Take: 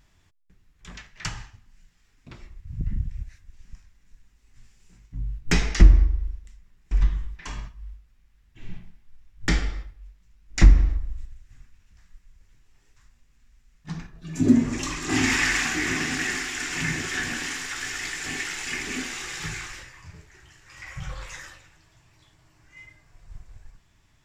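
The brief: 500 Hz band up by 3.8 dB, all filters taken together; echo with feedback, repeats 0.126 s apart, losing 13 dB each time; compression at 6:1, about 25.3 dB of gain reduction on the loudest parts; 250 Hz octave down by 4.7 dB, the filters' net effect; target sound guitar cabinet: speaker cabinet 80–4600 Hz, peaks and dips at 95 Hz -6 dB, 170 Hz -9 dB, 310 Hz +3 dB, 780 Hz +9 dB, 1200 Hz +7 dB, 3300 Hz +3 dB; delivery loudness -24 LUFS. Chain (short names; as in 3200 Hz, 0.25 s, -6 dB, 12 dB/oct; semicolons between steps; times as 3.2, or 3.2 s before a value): bell 250 Hz -7.5 dB; bell 500 Hz +7.5 dB; compressor 6:1, threshold -35 dBFS; speaker cabinet 80–4600 Hz, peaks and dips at 95 Hz -6 dB, 170 Hz -9 dB, 310 Hz +3 dB, 780 Hz +9 dB, 1200 Hz +7 dB, 3300 Hz +3 dB; feedback echo 0.126 s, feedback 22%, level -13 dB; gain +14.5 dB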